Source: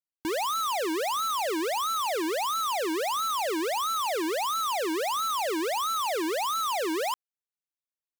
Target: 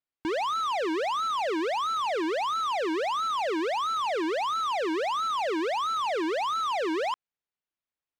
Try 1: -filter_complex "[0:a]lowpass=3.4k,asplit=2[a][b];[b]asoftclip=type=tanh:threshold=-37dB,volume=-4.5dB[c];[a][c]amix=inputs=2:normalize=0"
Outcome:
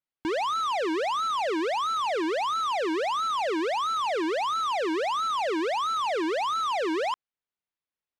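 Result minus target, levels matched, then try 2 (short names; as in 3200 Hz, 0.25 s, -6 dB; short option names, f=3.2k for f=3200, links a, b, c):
soft clip: distortion -4 dB
-filter_complex "[0:a]lowpass=3.4k,asplit=2[a][b];[b]asoftclip=type=tanh:threshold=-44.5dB,volume=-4.5dB[c];[a][c]amix=inputs=2:normalize=0"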